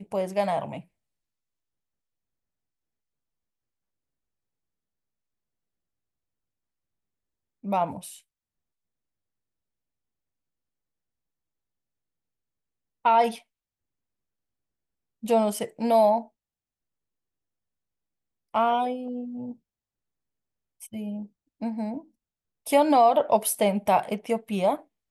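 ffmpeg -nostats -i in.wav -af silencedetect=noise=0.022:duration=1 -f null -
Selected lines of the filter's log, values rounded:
silence_start: 0.80
silence_end: 7.65 | silence_duration: 6.85
silence_start: 8.12
silence_end: 13.05 | silence_duration: 4.93
silence_start: 13.36
silence_end: 15.24 | silence_duration: 1.88
silence_start: 16.22
silence_end: 18.54 | silence_duration: 2.32
silence_start: 19.51
silence_end: 20.83 | silence_duration: 1.32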